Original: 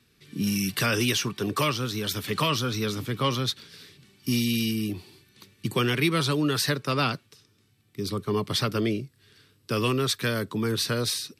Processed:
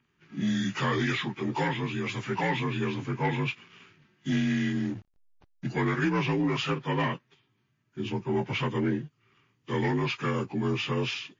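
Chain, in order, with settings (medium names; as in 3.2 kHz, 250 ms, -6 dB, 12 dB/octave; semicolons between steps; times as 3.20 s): frequency axis rescaled in octaves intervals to 84%; peaking EQ 6.3 kHz -10.5 dB 1.4 oct; waveshaping leveller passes 1; 4.36–5.68 s: hysteresis with a dead band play -37 dBFS; trim -3 dB; MP3 32 kbps 16 kHz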